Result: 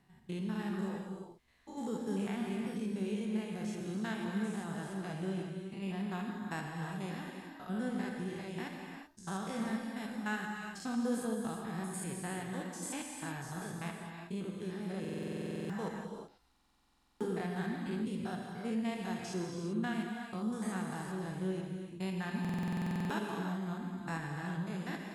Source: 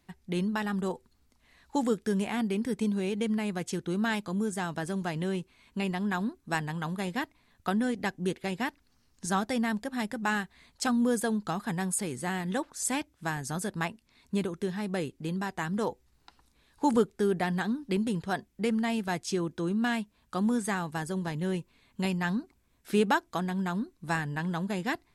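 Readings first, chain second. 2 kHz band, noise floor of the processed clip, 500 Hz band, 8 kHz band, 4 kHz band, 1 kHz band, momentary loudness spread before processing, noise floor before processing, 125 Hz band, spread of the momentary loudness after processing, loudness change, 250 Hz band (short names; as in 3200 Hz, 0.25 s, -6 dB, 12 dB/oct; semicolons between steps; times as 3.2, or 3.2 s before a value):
-9.0 dB, -66 dBFS, -8.5 dB, -9.5 dB, -9.0 dB, -9.5 dB, 7 LU, -69 dBFS, -5.0 dB, 6 LU, -7.5 dB, -6.5 dB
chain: stepped spectrum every 0.1 s; non-linear reverb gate 0.41 s flat, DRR 0.5 dB; stuck buffer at 15/16.51/22.4, samples 2048, times 14; gain -8 dB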